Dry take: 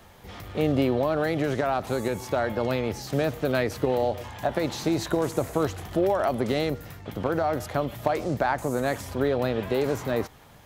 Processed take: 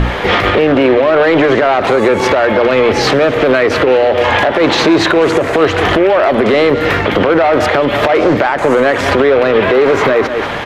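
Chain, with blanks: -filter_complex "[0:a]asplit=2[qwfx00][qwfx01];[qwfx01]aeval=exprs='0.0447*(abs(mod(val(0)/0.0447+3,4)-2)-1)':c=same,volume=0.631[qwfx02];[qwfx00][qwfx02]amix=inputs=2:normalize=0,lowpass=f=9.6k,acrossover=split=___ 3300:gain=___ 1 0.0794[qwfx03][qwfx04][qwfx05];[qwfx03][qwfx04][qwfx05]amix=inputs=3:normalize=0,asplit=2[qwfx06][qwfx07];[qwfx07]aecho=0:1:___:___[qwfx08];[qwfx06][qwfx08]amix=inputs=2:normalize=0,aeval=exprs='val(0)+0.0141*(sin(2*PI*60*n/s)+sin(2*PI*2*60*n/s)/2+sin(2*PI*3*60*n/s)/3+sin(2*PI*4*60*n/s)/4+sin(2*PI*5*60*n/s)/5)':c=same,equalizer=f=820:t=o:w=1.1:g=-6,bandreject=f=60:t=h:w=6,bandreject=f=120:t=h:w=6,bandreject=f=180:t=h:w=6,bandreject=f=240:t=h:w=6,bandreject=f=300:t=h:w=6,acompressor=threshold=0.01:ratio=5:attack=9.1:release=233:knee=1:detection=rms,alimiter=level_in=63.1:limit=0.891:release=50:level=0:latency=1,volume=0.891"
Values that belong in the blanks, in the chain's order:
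320, 0.158, 191, 0.126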